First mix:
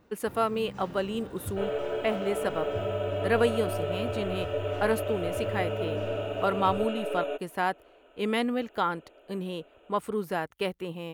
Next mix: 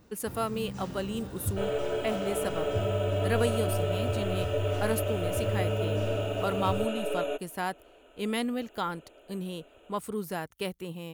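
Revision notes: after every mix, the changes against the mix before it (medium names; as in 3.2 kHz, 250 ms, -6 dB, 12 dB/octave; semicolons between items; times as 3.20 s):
speech -5.0 dB; master: add tone controls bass +6 dB, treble +11 dB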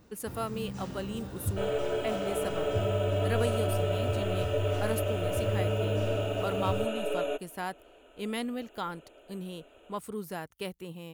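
speech -3.5 dB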